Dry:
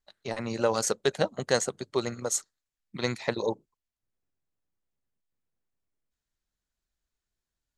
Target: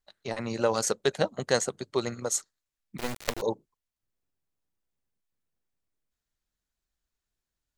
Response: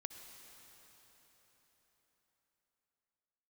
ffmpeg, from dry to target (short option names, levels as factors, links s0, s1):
-filter_complex "[0:a]asettb=1/sr,asplit=3[s0][s1][s2];[s0]atrim=end=2.984[s3];[s1]atrim=start=2.98:end=3.42,asetpts=PTS-STARTPTS,afade=t=in:d=0.004:c=qsin,afade=t=out:st=0.436:d=0.004:c=qsin,acrusher=bits=3:dc=4:mix=0:aa=0.000001[s4];[s2]atrim=start=3.416[s5];[s3][s4]acrossfade=d=0.004:c1=hsin:c2=qsin[s6];[s6][s5]acrossfade=d=0.004:c1=qsin:c2=hsin"